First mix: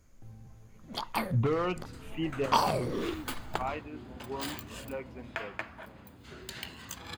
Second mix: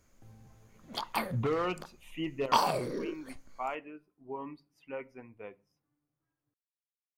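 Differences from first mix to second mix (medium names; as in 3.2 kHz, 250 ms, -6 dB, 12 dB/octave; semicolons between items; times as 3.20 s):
second sound: muted; master: add bass shelf 190 Hz -8 dB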